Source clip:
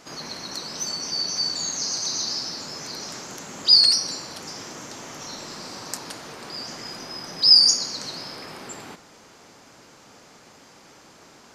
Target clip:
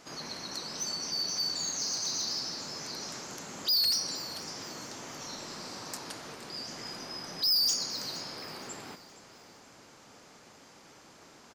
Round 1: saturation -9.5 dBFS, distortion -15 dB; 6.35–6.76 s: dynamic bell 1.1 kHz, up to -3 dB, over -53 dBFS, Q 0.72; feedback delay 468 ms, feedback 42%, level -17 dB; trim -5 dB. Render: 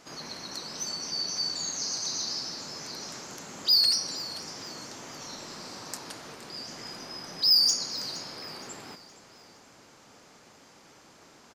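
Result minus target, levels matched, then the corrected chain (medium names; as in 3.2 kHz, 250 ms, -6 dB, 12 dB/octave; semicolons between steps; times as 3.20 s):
saturation: distortion -9 dB
saturation -18.5 dBFS, distortion -6 dB; 6.35–6.76 s: dynamic bell 1.1 kHz, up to -3 dB, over -53 dBFS, Q 0.72; feedback delay 468 ms, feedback 42%, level -17 dB; trim -5 dB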